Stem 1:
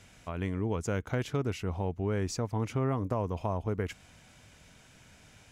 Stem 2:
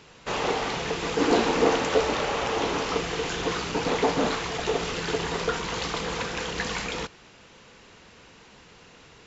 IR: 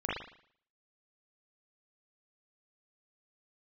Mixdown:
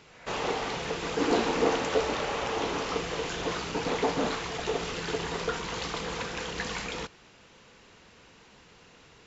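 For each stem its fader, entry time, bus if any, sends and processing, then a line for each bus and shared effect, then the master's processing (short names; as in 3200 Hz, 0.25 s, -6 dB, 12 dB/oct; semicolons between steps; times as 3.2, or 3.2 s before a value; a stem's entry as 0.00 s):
-8.5 dB, 0.00 s, no send, elliptic band-pass 500–2200 Hz, stop band 40 dB; backwards sustainer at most 75 dB/s
-4.0 dB, 0.00 s, no send, dry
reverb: off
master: dry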